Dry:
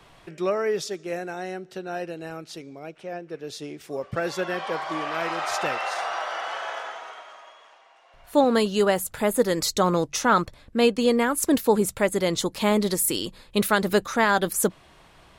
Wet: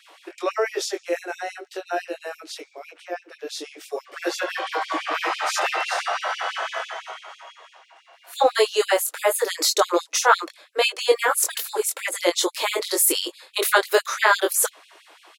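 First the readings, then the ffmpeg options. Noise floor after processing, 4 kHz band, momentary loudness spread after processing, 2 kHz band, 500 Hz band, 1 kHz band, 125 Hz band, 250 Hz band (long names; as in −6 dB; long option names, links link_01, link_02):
−57 dBFS, +5.5 dB, 16 LU, +4.5 dB, 0.0 dB, +2.5 dB, below −40 dB, −9.5 dB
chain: -filter_complex "[0:a]asplit=2[link_01][link_02];[link_02]adelay=23,volume=-3.5dB[link_03];[link_01][link_03]amix=inputs=2:normalize=0,afftfilt=real='re*gte(b*sr/1024,280*pow(2400/280,0.5+0.5*sin(2*PI*6*pts/sr)))':imag='im*gte(b*sr/1024,280*pow(2400/280,0.5+0.5*sin(2*PI*6*pts/sr)))':win_size=1024:overlap=0.75,volume=4dB"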